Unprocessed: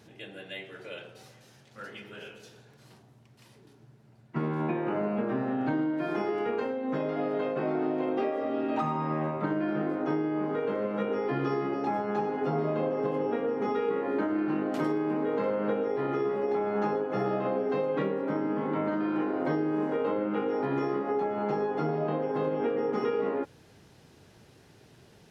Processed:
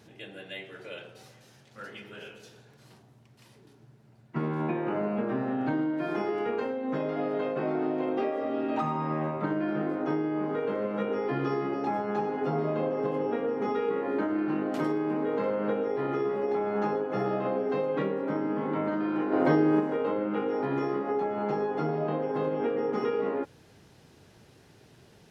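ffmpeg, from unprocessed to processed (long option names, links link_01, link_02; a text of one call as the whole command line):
ffmpeg -i in.wav -filter_complex "[0:a]asplit=3[link_01][link_02][link_03];[link_01]afade=type=out:start_time=19.31:duration=0.02[link_04];[link_02]acontrast=49,afade=type=in:start_time=19.31:duration=0.02,afade=type=out:start_time=19.79:duration=0.02[link_05];[link_03]afade=type=in:start_time=19.79:duration=0.02[link_06];[link_04][link_05][link_06]amix=inputs=3:normalize=0" out.wav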